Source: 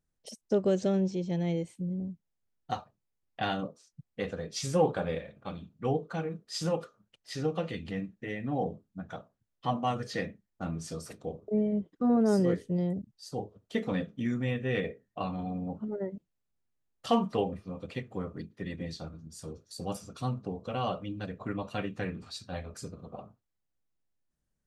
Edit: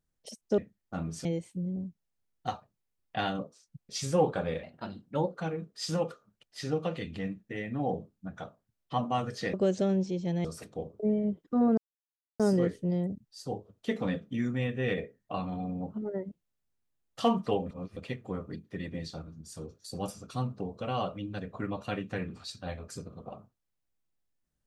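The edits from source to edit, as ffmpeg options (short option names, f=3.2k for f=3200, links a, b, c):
-filter_complex "[0:a]asplit=11[a][b][c][d][e][f][g][h][i][j][k];[a]atrim=end=0.582[l];[b]atrim=start=10.258:end=10.932[m];[c]atrim=start=1.488:end=4.132[n];[d]atrim=start=4.498:end=5.244[o];[e]atrim=start=5.24:end=6.07,asetpts=PTS-STARTPTS,asetrate=51156,aresample=44100,atrim=end_sample=31554,asetpts=PTS-STARTPTS[p];[f]atrim=start=6.066:end=10.262[q];[g]atrim=start=0.578:end=1.492[r];[h]atrim=start=10.928:end=12.26,asetpts=PTS-STARTPTS,afade=t=out:st=1.328:d=0.004:c=hsin,apad=pad_dur=0.62[s];[i]atrim=start=12.26:end=17.572,asetpts=PTS-STARTPTS,afade=t=in:d=0.004:c=hsin[t];[j]atrim=start=17.568:end=17.832,asetpts=PTS-STARTPTS,areverse[u];[k]atrim=start=17.828[v];[l][m]acrossfade=d=0.004:c1=hsin:c2=hsin[w];[w][n]acrossfade=d=0.004:c1=hsin:c2=hsin[x];[x][o]acrossfade=d=0.004:c1=hsin:c2=hsin[y];[y][p]acrossfade=d=0.004:c1=hsin:c2=hsin[z];[z][q]acrossfade=d=0.004:c1=hsin:c2=hsin[aa];[aa][r]acrossfade=d=0.004:c1=hsin:c2=hsin[ab];[s][t]concat=n=2:v=0:a=1[ac];[ab][ac]acrossfade=d=0.004:c1=hsin:c2=hsin[ad];[ad][u]acrossfade=d=0.004:c1=hsin:c2=hsin[ae];[ae][v]acrossfade=d=0.004:c1=hsin:c2=hsin"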